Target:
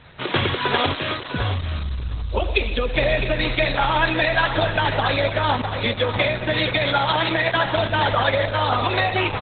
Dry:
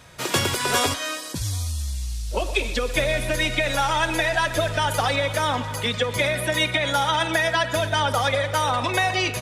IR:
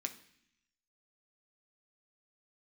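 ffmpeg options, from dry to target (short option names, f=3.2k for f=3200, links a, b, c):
-filter_complex "[0:a]asplit=2[a][b];[b]adelay=684,lowpass=f=3.7k:p=1,volume=-19dB,asplit=2[c][d];[d]adelay=684,lowpass=f=3.7k:p=1,volume=0.5,asplit=2[e][f];[f]adelay=684,lowpass=f=3.7k:p=1,volume=0.5,asplit=2[g][h];[h]adelay=684,lowpass=f=3.7k:p=1,volume=0.5[i];[c][e][g][i]amix=inputs=4:normalize=0[j];[a][j]amix=inputs=2:normalize=0,aresample=16000,aresample=44100,asplit=2[k][l];[l]aecho=0:1:657:0.376[m];[k][m]amix=inputs=2:normalize=0,volume=3.5dB" -ar 48000 -c:a libopus -b:a 8k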